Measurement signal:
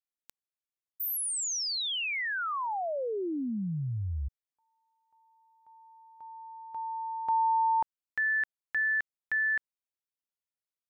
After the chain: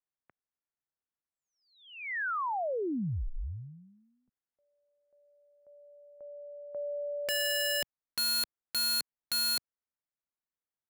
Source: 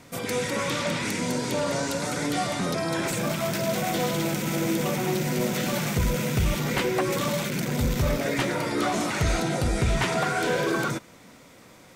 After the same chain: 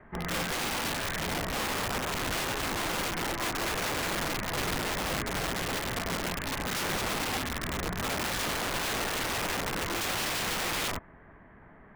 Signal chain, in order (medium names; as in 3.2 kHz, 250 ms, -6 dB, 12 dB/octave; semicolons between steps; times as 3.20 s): mistuned SSB -320 Hz 260–2300 Hz; integer overflow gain 26.5 dB